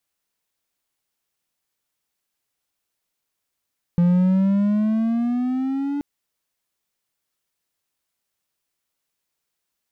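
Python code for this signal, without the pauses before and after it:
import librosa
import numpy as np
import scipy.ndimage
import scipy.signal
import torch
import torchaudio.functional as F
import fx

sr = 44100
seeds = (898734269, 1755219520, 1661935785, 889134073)

y = fx.riser_tone(sr, length_s=2.03, level_db=-11, wave='triangle', hz=172.0, rise_st=9.0, swell_db=-9)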